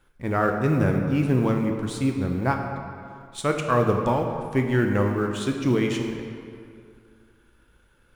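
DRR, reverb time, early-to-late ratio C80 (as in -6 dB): 3.0 dB, 2.4 s, 5.5 dB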